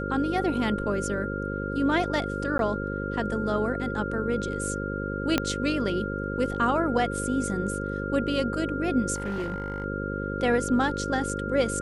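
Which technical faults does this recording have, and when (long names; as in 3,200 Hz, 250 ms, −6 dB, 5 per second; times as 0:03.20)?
mains buzz 50 Hz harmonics 11 −32 dBFS
whistle 1,400 Hz −34 dBFS
0:02.58–0:02.59: drop-out 12 ms
0:05.38: click −8 dBFS
0:09.14–0:09.84: clipping −26 dBFS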